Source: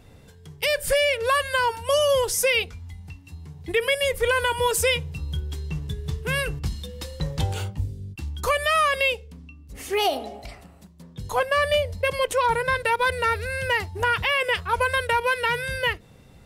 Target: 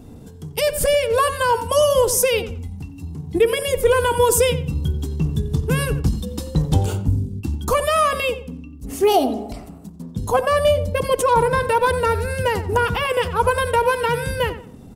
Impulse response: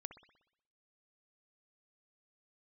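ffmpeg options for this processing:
-filter_complex "[0:a]equalizer=f=250:t=o:w=1:g=10,equalizer=f=2k:t=o:w=1:g=-11,equalizer=f=4k:t=o:w=1:g=-5,asplit=2[a][b];[1:a]atrim=start_sample=2205[c];[b][c]afir=irnorm=-1:irlink=0,volume=-7.5dB[d];[a][d]amix=inputs=2:normalize=0,atempo=1.1,bandreject=f=550:w=12,asplit=2[e][f];[f]adelay=90,lowpass=f=2.5k:p=1,volume=-12dB,asplit=2[g][h];[h]adelay=90,lowpass=f=2.5k:p=1,volume=0.31,asplit=2[i][j];[j]adelay=90,lowpass=f=2.5k:p=1,volume=0.31[k];[e][g][i][k]amix=inputs=4:normalize=0,volume=5dB"

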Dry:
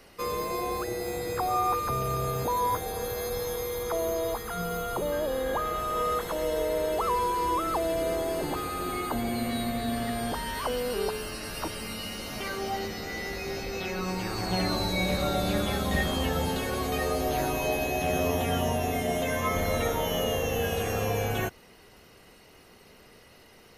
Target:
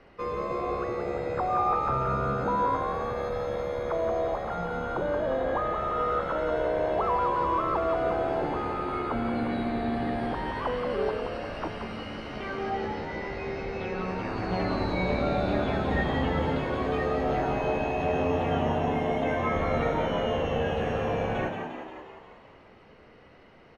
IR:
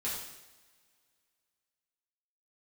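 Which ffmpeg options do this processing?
-filter_complex "[0:a]lowpass=2.1k,asplit=9[a][b][c][d][e][f][g][h][i];[b]adelay=176,afreqshift=71,volume=-6.5dB[j];[c]adelay=352,afreqshift=142,volume=-11.1dB[k];[d]adelay=528,afreqshift=213,volume=-15.7dB[l];[e]adelay=704,afreqshift=284,volume=-20.2dB[m];[f]adelay=880,afreqshift=355,volume=-24.8dB[n];[g]adelay=1056,afreqshift=426,volume=-29.4dB[o];[h]adelay=1232,afreqshift=497,volume=-34dB[p];[i]adelay=1408,afreqshift=568,volume=-38.6dB[q];[a][j][k][l][m][n][o][p][q]amix=inputs=9:normalize=0,asplit=2[r][s];[1:a]atrim=start_sample=2205,adelay=14[t];[s][t]afir=irnorm=-1:irlink=0,volume=-16dB[u];[r][u]amix=inputs=2:normalize=0"

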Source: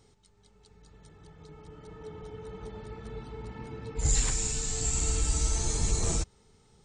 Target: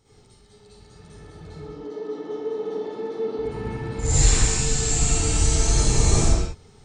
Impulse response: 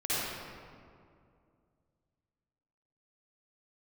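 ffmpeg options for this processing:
-filter_complex "[0:a]asettb=1/sr,asplit=3[a][b][c];[a]atrim=end=1.594[d];[b]atrim=start=1.59:end=3.39,asetpts=PTS-STARTPTS,afade=t=in:d=0.004:c=qsin,afade=t=out:st=1.796:d=0.004:c=qsin,highpass=f=240:w=0.5412,highpass=f=240:w=1.3066,equalizer=f=290:t=q:w=4:g=8,equalizer=f=450:t=q:w=4:g=7,equalizer=f=1.5k:t=q:w=4:g=-6,equalizer=f=2.4k:t=q:w=4:g=-9,lowpass=f=6.3k:w=0.5412,lowpass=f=6.3k:w=1.3066[e];[c]atrim=start=3.386[f];[d][e]acrossfade=d=0.004:c1=hsin:c2=qsin[g];[g][f]acrossfade=d=0.004:c1=qsin:c2=hsin[h];[1:a]atrim=start_sample=2205,afade=t=out:st=0.36:d=0.01,atrim=end_sample=16317[i];[h][i]afir=irnorm=-1:irlink=0,volume=2dB"

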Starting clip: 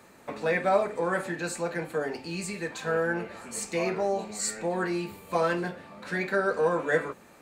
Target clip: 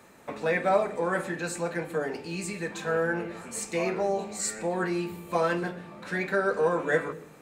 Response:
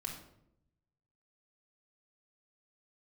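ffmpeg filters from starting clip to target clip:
-filter_complex "[0:a]bandreject=f=4.5k:w=16,asplit=2[a][b];[b]lowshelf=f=530:t=q:w=1.5:g=7.5[c];[1:a]atrim=start_sample=2205,adelay=126[d];[c][d]afir=irnorm=-1:irlink=0,volume=-20.5dB[e];[a][e]amix=inputs=2:normalize=0"

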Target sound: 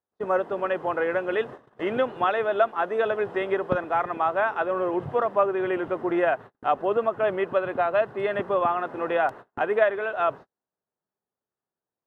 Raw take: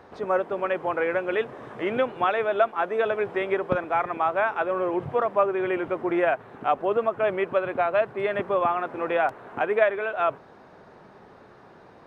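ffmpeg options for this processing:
-af "agate=range=-43dB:threshold=-37dB:ratio=16:detection=peak,bandreject=f=2.3k:w=7.5"

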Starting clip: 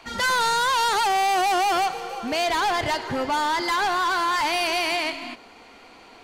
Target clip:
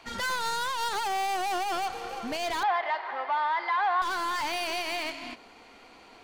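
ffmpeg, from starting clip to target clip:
-filter_complex "[0:a]alimiter=limit=-22.5dB:level=0:latency=1:release=157,aeval=exprs='0.075*(cos(1*acos(clip(val(0)/0.075,-1,1)))-cos(1*PI/2))+0.00944*(cos(4*acos(clip(val(0)/0.075,-1,1)))-cos(4*PI/2))':c=same,asettb=1/sr,asplit=3[a][b][c];[a]atrim=end=2.634[d];[b]atrim=start=2.63:end=4.02,asetpts=PTS-STARTPTS,afade=t=in:d=0.004:c=qsin,afade=t=out:st=1.386:d=0.004:c=qsin,highpass=f=470:w=0.5412,highpass=f=470:w=1.3066,equalizer=f=480:t=q:w=4:g=-7,equalizer=f=760:t=q:w=4:g=7,equalizer=f=1.1k:t=q:w=4:g=6,equalizer=f=1.9k:t=q:w=4:g=5,equalizer=f=2.8k:t=q:w=4:g=-5,lowpass=f=3.3k:w=0.5412,lowpass=f=3.3k:w=1.3066[e];[c]atrim=start=4.016[f];[d][e]acrossfade=d=0.004:c1=hsin:c2=qsin[g];[g][f]acrossfade=d=0.004:c1=qsin:c2=hsin,volume=-4.5dB"

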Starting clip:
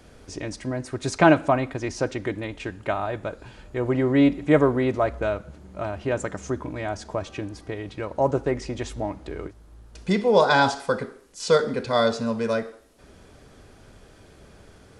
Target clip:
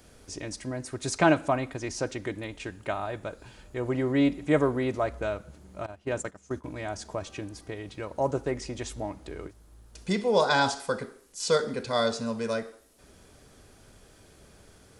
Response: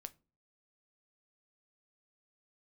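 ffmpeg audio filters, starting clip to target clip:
-filter_complex "[0:a]asettb=1/sr,asplit=3[a][b][c];[a]atrim=end=5.864[d];[b]atrim=start=5.86:end=6.64,asetpts=PTS-STARTPTS,afade=t=in:d=0.004:c=qsin,afade=t=out:st=0.776:d=0.004:c=qsin,agate=range=-17dB:threshold=-28dB:ratio=16:detection=peak[e];[c]atrim=start=6.636[f];[d][e]acrossfade=d=0.004:c1=hsin:c2=qsin[g];[g][f]acrossfade=d=0.004:c1=qsin:c2=hsin,highshelf=f=5.7k:g=11.5,volume=-5.5dB"

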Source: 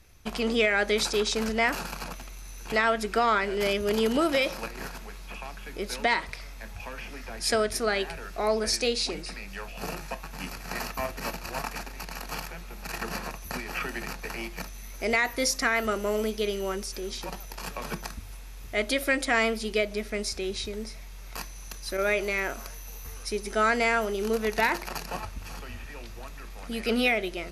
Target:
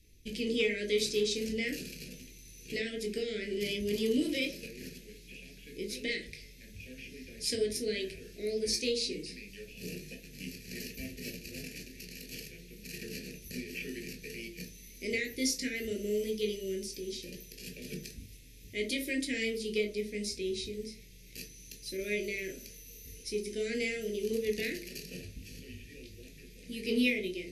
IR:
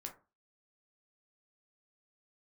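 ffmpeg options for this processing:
-filter_complex "[0:a]asuperstop=centerf=1000:order=8:qfactor=0.6,aeval=exprs='0.251*(cos(1*acos(clip(val(0)/0.251,-1,1)))-cos(1*PI/2))+0.0141*(cos(3*acos(clip(val(0)/0.251,-1,1)))-cos(3*PI/2))':c=same[a];[1:a]atrim=start_sample=2205,asetrate=36603,aresample=44100[b];[a][b]afir=irnorm=-1:irlink=0"

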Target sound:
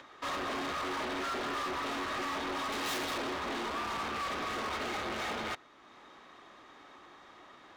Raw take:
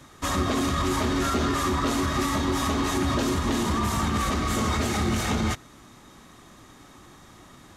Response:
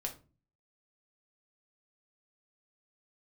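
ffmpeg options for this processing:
-filter_complex "[0:a]aeval=exprs='0.168*(cos(1*acos(clip(val(0)/0.168,-1,1)))-cos(1*PI/2))+0.0531*(cos(5*acos(clip(val(0)/0.168,-1,1)))-cos(5*PI/2))':c=same,asettb=1/sr,asplit=3[a][b][c];[a]atrim=end=2.724[d];[b]atrim=start=2.72:end=3.18,asetpts=PTS-STARTPTS,afade=t=in:d=0.004:c=qsin,afade=t=out:st=0.456:d=0.004:c=qsin,aemphasis=mode=production:type=75fm[e];[c]atrim=start=3.176[f];[d][e]acrossfade=d=0.004:c1=hsin:c2=qsin[g];[g][f]acrossfade=d=0.004:c1=qsin:c2=hsin,aeval=exprs='0.891*(cos(1*acos(clip(val(0)/0.891,-1,1)))-cos(1*PI/2))+0.1*(cos(7*acos(clip(val(0)/0.891,-1,1)))-cos(7*PI/2))':c=same,asplit=2[h][i];[i]acrusher=bits=5:mix=0:aa=0.000001,volume=-6dB[j];[h][j]amix=inputs=2:normalize=0,acompressor=mode=upward:threshold=-44dB:ratio=2.5,acrossover=split=340 4300:gain=0.1 1 0.0708[k][l][m];[k][l][m]amix=inputs=3:normalize=0,volume=32.5dB,asoftclip=hard,volume=-32.5dB"

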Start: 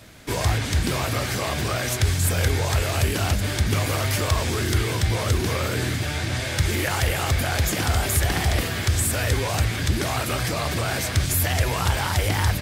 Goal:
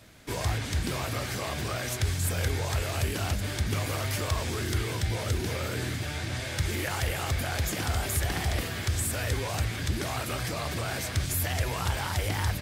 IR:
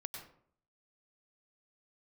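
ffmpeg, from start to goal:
-filter_complex "[0:a]asettb=1/sr,asplit=3[a][b][c];[a]atrim=end=5.004[d];[b]atrim=start=5:end=5.67,asetpts=PTS-STARTPTS,afade=t=in:d=0.004:c=qsin,afade=t=out:st=0.666:d=0.004:c=qsin,bandreject=f=1.1k:w=7.2[e];[c]atrim=start=5.666[f];[d][e]acrossfade=d=0.004:c1=hsin:c2=qsin[g];[g][f]acrossfade=d=0.004:c1=qsin:c2=hsin,volume=-7dB"

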